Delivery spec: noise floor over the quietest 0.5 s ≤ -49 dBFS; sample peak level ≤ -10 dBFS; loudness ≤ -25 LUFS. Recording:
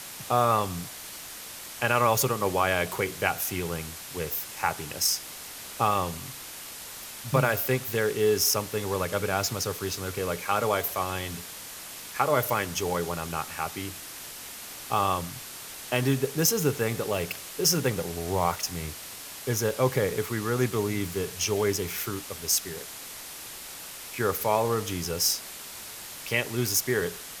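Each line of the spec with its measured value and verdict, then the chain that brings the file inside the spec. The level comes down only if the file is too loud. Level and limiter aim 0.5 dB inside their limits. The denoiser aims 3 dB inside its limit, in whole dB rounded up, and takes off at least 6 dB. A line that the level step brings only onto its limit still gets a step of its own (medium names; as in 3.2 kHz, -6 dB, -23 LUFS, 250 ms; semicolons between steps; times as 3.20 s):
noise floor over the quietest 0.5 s -41 dBFS: fail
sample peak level -7.5 dBFS: fail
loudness -27.5 LUFS: pass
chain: noise reduction 11 dB, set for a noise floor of -41 dBFS; peak limiter -10.5 dBFS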